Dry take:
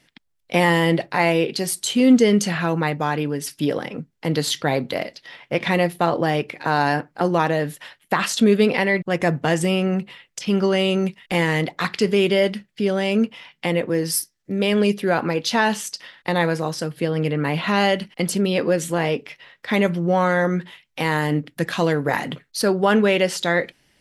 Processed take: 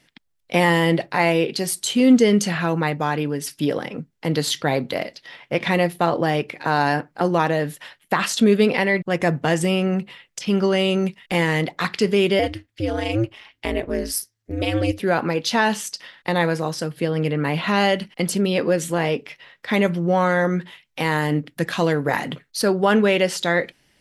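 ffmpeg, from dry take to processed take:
-filter_complex "[0:a]asettb=1/sr,asplit=3[a][b][c];[a]atrim=end=12.394[d];[b]atrim=start=12.39:end=15,asetpts=PTS-STARTPTS,afade=t=in:d=0.004:c=qsin,afade=t=out:st=2.606:d=0.004:c=qsin,aeval=exprs='val(0)*sin(2*PI*110*n/s)':c=same[e];[c]atrim=start=14.996[f];[d][e]acrossfade=d=0.004:c1=hsin:c2=qsin[g];[g][f]acrossfade=d=0.004:c1=qsin:c2=hsin"

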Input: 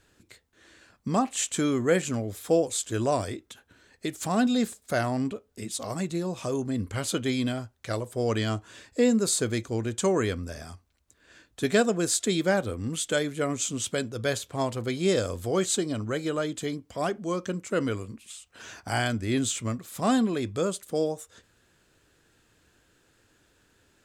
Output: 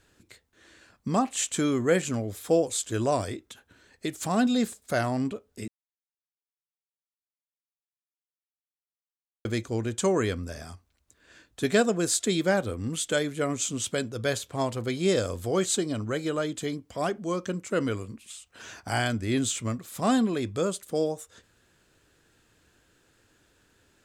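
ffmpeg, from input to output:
-filter_complex "[0:a]asplit=3[a][b][c];[a]atrim=end=5.68,asetpts=PTS-STARTPTS,afade=t=out:st=5.676:d=0.004:c=hsin[d];[b]atrim=start=5.68:end=9.45,asetpts=PTS-STARTPTS,volume=0[e];[c]atrim=start=9.45,asetpts=PTS-STARTPTS,afade=t=in:d=0.004:c=hsin[f];[d][e][f]concat=n=3:v=0:a=1"

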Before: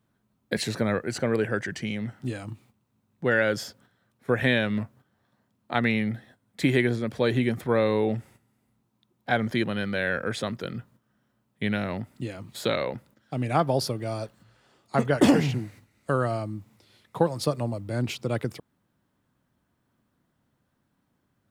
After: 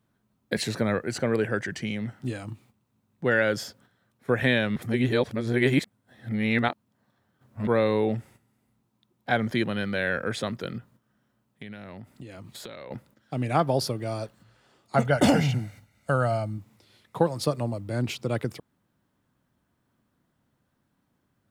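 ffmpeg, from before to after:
-filter_complex "[0:a]asettb=1/sr,asplit=3[a][b][c];[a]atrim=end=10.784[d];[b]atrim=start=10.78:end=12.91,asetpts=PTS-STARTPTS,afade=t=in:d=0.004:c=qsin,afade=t=out:st=2.126:d=0.004:c=qsin,acompressor=threshold=-38dB:ratio=6:attack=3.2:release=140:knee=1:detection=peak[e];[c]atrim=start=12.906[f];[d][e]acrossfade=d=0.004:c1=hsin:c2=qsin[g];[g][f]acrossfade=d=0.004:c1=qsin:c2=hsin,asettb=1/sr,asplit=3[h][i][j];[h]atrim=end=14.964[k];[i]atrim=start=14.96:end=16.58,asetpts=PTS-STARTPTS,afade=t=in:d=0.004:c=qsin,afade=t=out:st=1.616:d=0.004:c=qsin,aecho=1:1:1.4:0.54,atrim=end_sample=71442[l];[j]atrim=start=16.576[m];[k][l]acrossfade=d=0.004:c1=hsin:c2=qsin[n];[n][m]acrossfade=d=0.004:c1=qsin:c2=hsin,asplit=3[o][p][q];[o]atrim=end=4.762[r];[p]atrim=start=4.758:end=7.672,asetpts=PTS-STARTPTS,areverse[s];[q]atrim=start=7.668[t];[r][s]acrossfade=d=0.004:c1=hsin:c2=hsin[u];[u][t]acrossfade=d=0.004:c1=hsin:c2=hsin"

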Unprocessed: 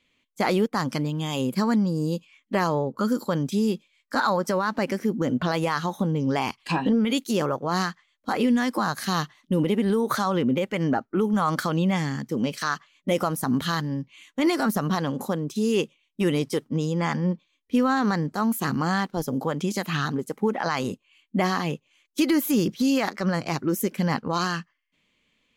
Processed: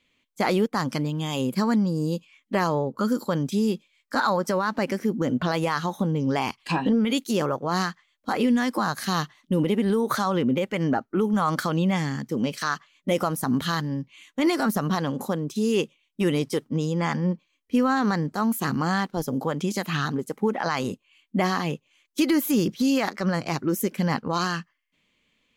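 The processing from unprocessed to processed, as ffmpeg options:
-filter_complex "[0:a]asettb=1/sr,asplit=3[a][b][c];[a]atrim=end=17.204[d];[b]atrim=start=17.2:end=17.96,asetpts=PTS-STARTPTS,afade=t=in:d=0.004:c=qsin,afade=t=out:st=0.756:d=0.004:c=qsin,bandreject=f=3.6k:w=7.3[e];[c]atrim=start=17.956[f];[d][e]acrossfade=d=0.004:c1=hsin:c2=qsin[g];[g][f]acrossfade=d=0.004:c1=qsin:c2=hsin"

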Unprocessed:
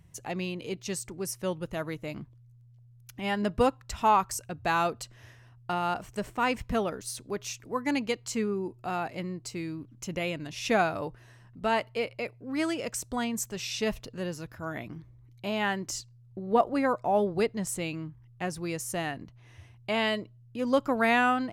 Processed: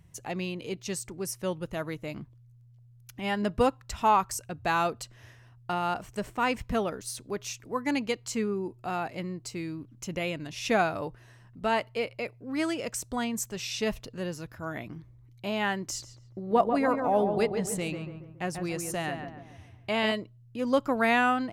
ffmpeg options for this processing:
-filter_complex "[0:a]asettb=1/sr,asplit=3[a][b][c];[a]atrim=end=15.884[d];[b]atrim=start=15.88:end=20.12,asetpts=PTS-STARTPTS,afade=t=in:d=0.004:c=qsin,afade=t=out:st=4.236:d=0.004:c=qsin,asplit=2[e][f];[f]adelay=140,lowpass=f=1.6k:p=1,volume=-5.5dB,asplit=2[g][h];[h]adelay=140,lowpass=f=1.6k:p=1,volume=0.48,asplit=2[i][j];[j]adelay=140,lowpass=f=1.6k:p=1,volume=0.48,asplit=2[k][l];[l]adelay=140,lowpass=f=1.6k:p=1,volume=0.48,asplit=2[m][n];[n]adelay=140,lowpass=f=1.6k:p=1,volume=0.48,asplit=2[o][p];[p]adelay=140,lowpass=f=1.6k:p=1,volume=0.48[q];[e][g][i][k][m][o][q]amix=inputs=7:normalize=0,atrim=end_sample=186984[r];[c]atrim=start=20.116[s];[d][r]acrossfade=d=0.004:c1=hsin:c2=qsin[t];[t][s]acrossfade=d=0.004:c1=qsin:c2=hsin"

